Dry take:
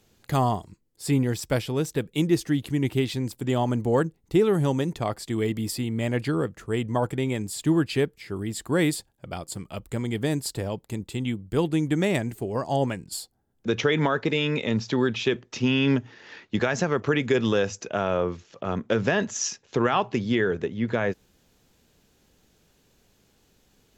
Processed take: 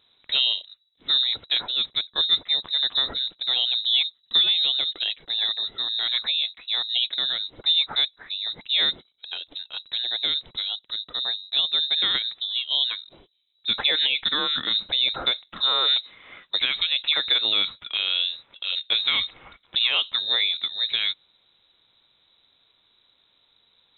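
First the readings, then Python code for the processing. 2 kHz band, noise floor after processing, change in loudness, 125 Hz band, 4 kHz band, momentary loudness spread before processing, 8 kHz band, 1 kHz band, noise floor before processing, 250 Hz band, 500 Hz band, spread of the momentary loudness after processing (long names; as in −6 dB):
0.0 dB, −66 dBFS, +4.0 dB, below −25 dB, +18.0 dB, 10 LU, below −40 dB, −7.0 dB, −65 dBFS, −23.5 dB, −18.0 dB, 9 LU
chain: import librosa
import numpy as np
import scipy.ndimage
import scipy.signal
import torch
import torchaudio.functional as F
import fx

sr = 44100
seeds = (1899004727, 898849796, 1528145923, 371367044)

y = fx.freq_invert(x, sr, carrier_hz=3900)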